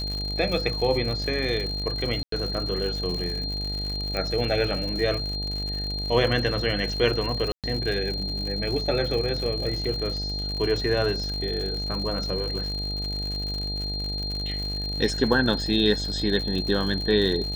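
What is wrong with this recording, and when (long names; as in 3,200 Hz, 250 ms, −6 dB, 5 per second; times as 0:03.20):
mains buzz 50 Hz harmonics 17 −32 dBFS
surface crackle 110 per second −30 dBFS
whistle 4,200 Hz −30 dBFS
0:02.23–0:02.32: drop-out 93 ms
0:04.17: click −15 dBFS
0:07.52–0:07.64: drop-out 117 ms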